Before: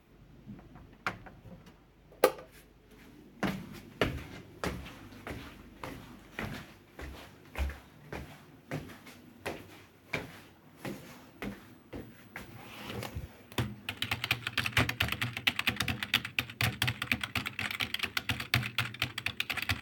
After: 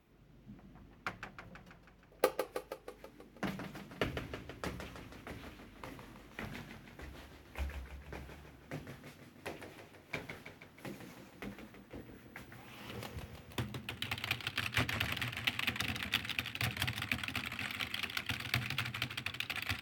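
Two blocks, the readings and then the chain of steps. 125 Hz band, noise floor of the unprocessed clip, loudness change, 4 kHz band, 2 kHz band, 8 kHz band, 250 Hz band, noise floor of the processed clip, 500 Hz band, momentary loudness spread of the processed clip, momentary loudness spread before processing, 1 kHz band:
-5.0 dB, -59 dBFS, -5.5 dB, -4.5 dB, -5.0 dB, -5.0 dB, -5.0 dB, -61 dBFS, -5.0 dB, 18 LU, 20 LU, -5.0 dB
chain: modulated delay 161 ms, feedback 62%, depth 174 cents, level -7 dB; trim -6 dB

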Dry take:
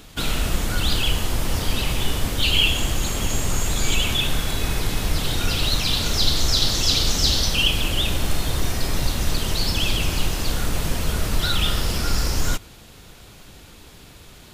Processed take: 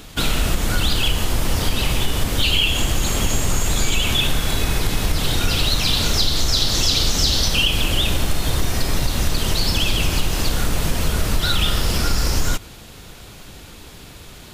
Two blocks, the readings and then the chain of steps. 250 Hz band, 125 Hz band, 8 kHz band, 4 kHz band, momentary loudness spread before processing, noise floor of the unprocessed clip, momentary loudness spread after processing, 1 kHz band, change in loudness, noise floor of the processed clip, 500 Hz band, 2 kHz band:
+3.0 dB, +2.5 dB, +2.5 dB, +2.0 dB, 7 LU, -45 dBFS, 6 LU, +3.0 dB, +2.5 dB, -40 dBFS, +3.0 dB, +2.5 dB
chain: compression, threshold -18 dBFS, peak gain reduction 6.5 dB; trim +5 dB

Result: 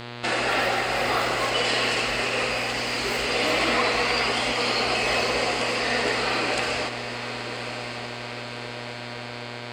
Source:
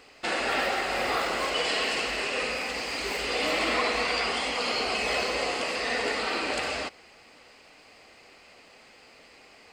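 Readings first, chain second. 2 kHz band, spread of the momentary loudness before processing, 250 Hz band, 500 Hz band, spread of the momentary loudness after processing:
+4.0 dB, 5 LU, +5.5 dB, +4.5 dB, 12 LU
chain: mains buzz 120 Hz, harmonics 38, -41 dBFS -3 dB/octave; echo that smears into a reverb 1143 ms, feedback 60%, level -10.5 dB; trim +3.5 dB

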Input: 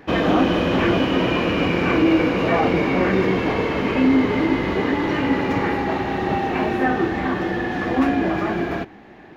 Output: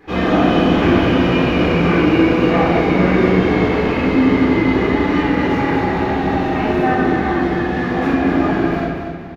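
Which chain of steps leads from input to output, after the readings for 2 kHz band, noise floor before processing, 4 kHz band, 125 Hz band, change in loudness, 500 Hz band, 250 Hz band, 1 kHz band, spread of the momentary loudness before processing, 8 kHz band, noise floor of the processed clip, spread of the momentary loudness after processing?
+3.5 dB, -43 dBFS, +2.0 dB, +6.5 dB, +4.5 dB, +4.0 dB, +5.0 dB, +4.0 dB, 6 LU, no reading, -24 dBFS, 5 LU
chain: feedback delay 237 ms, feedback 36%, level -7.5 dB; simulated room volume 500 m³, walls mixed, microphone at 3.9 m; trim -7 dB

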